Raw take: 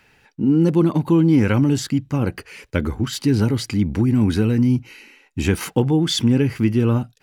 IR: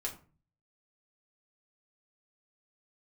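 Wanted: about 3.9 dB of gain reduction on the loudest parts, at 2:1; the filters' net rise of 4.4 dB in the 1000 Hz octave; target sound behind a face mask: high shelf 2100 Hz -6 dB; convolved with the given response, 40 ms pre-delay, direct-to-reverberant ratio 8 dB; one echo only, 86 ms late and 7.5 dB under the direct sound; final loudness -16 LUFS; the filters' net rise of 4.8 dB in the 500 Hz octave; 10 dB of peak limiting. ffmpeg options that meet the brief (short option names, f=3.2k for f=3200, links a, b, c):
-filter_complex "[0:a]equalizer=f=500:t=o:g=6,equalizer=f=1k:t=o:g=5,acompressor=threshold=-16dB:ratio=2,alimiter=limit=-12dB:level=0:latency=1,aecho=1:1:86:0.422,asplit=2[a][b];[1:a]atrim=start_sample=2205,adelay=40[c];[b][c]afir=irnorm=-1:irlink=0,volume=-9dB[d];[a][d]amix=inputs=2:normalize=0,highshelf=f=2.1k:g=-6,volume=5dB"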